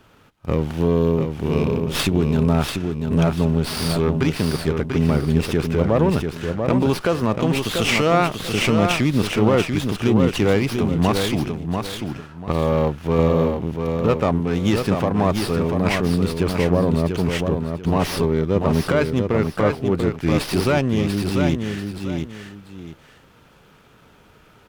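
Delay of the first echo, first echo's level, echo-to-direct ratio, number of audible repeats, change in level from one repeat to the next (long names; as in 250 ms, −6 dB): 690 ms, −5.5 dB, −5.0 dB, 2, −11.0 dB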